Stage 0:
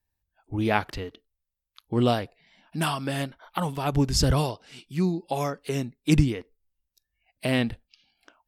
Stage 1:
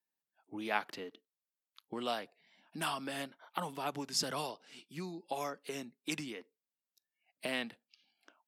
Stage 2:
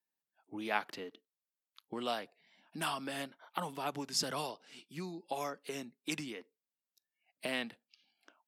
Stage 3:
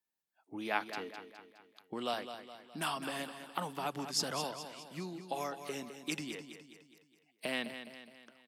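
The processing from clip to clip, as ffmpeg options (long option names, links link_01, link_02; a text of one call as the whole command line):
ffmpeg -i in.wav -filter_complex "[0:a]highpass=frequency=190:width=0.5412,highpass=frequency=190:width=1.3066,acrossover=split=670|6500[link_01][link_02][link_03];[link_01]acompressor=threshold=-33dB:ratio=6[link_04];[link_04][link_02][link_03]amix=inputs=3:normalize=0,volume=-7.5dB" out.wav
ffmpeg -i in.wav -af anull out.wav
ffmpeg -i in.wav -af "aecho=1:1:208|416|624|832|1040:0.316|0.155|0.0759|0.0372|0.0182" out.wav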